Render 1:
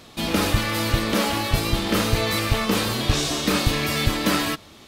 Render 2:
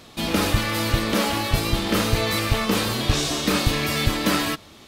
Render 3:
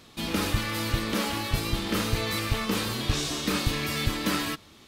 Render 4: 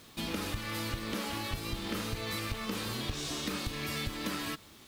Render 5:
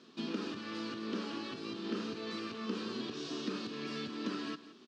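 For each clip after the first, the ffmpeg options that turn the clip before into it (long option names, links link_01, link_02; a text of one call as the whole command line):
ffmpeg -i in.wav -af anull out.wav
ffmpeg -i in.wav -af "equalizer=frequency=650:width=2.1:gain=-4.5,volume=-5.5dB" out.wav
ffmpeg -i in.wav -af "acompressor=threshold=-29dB:ratio=6,acrusher=bits=8:mix=0:aa=0.000001,volume=-3dB" out.wav
ffmpeg -i in.wav -af "highpass=frequency=180:width=0.5412,highpass=frequency=180:width=1.3066,equalizer=frequency=240:width_type=q:width=4:gain=6,equalizer=frequency=390:width_type=q:width=4:gain=8,equalizer=frequency=560:width_type=q:width=4:gain=-5,equalizer=frequency=820:width_type=q:width=4:gain=-7,equalizer=frequency=2100:width_type=q:width=4:gain=-10,equalizer=frequency=3600:width_type=q:width=4:gain=-4,lowpass=frequency=5100:width=0.5412,lowpass=frequency=5100:width=1.3066,aecho=1:1:171:0.158,volume=-3dB" out.wav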